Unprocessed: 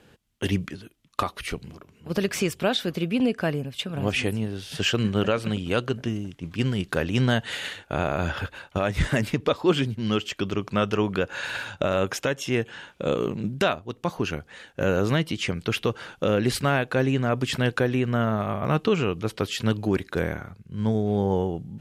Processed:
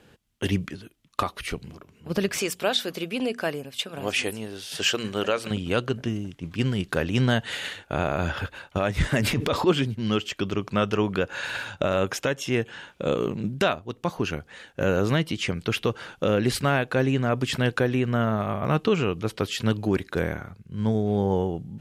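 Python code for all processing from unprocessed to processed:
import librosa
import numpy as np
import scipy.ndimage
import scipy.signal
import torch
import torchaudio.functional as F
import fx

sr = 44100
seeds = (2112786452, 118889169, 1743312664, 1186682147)

y = fx.chain(x, sr, fx.bass_treble(bass_db=-12, treble_db=5),
    fx.hum_notches(base_hz=60, count=4), at=(2.38, 5.51))
y = fx.chain(y, sr, fx.transient(attack_db=-7, sustain_db=9),
    fx.env_flatten(amount_pct=50), at=(9.2, 9.67))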